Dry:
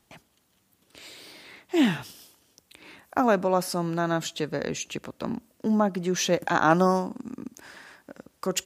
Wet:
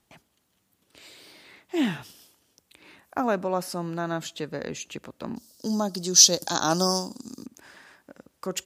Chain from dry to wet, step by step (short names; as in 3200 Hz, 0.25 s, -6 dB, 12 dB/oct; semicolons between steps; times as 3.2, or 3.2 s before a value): 5.36–7.46 resonant high shelf 3300 Hz +14 dB, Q 3; gain -3.5 dB